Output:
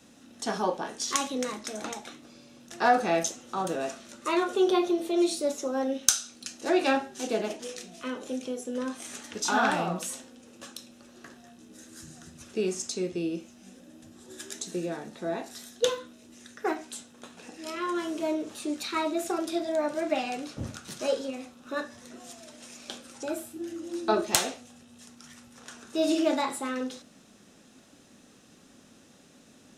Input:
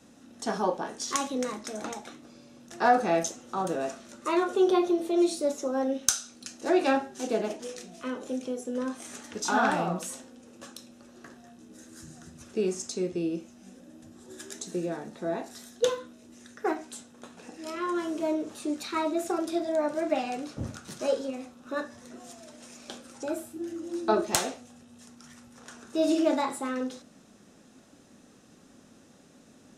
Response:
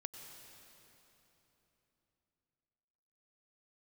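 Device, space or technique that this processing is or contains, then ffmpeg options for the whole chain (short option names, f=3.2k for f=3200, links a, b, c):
presence and air boost: -af "equalizer=f=3.1k:t=o:w=1.6:g=5,highshelf=f=10k:g=6.5,volume=-1dB"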